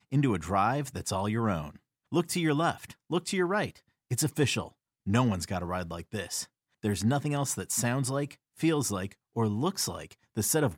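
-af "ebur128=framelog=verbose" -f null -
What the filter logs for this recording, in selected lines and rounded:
Integrated loudness:
  I:         -30.2 LUFS
  Threshold: -40.5 LUFS
Loudness range:
  LRA:         1.6 LU
  Threshold: -50.6 LUFS
  LRA low:   -31.5 LUFS
  LRA high:  -29.9 LUFS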